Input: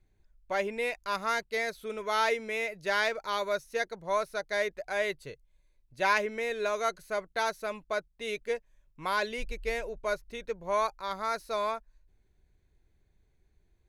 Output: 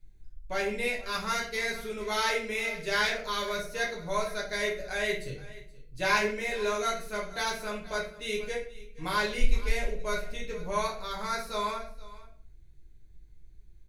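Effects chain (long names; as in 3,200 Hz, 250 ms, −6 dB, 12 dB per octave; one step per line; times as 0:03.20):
parametric band 850 Hz −10.5 dB 2.8 octaves
single-tap delay 475 ms −19 dB
rectangular room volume 52 cubic metres, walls mixed, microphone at 1 metre
level +2.5 dB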